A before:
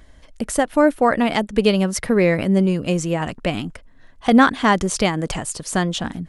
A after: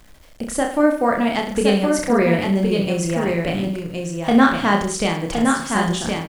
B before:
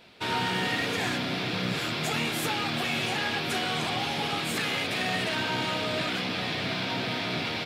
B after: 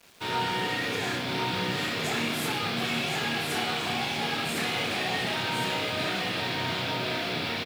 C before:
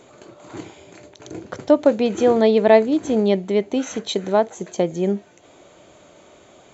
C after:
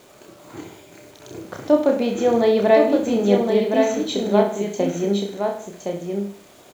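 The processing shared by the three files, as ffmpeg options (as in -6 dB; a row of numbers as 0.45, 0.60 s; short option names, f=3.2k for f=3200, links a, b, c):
-filter_complex "[0:a]asplit=2[a][b];[b]aecho=0:1:30|64.5|104.2|149.8|202.3:0.631|0.398|0.251|0.158|0.1[c];[a][c]amix=inputs=2:normalize=0,acrusher=bits=7:mix=0:aa=0.000001,asplit=2[d][e];[e]aecho=0:1:1066:0.596[f];[d][f]amix=inputs=2:normalize=0,volume=-3.5dB"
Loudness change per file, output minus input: 0.0, 0.0, -1.0 LU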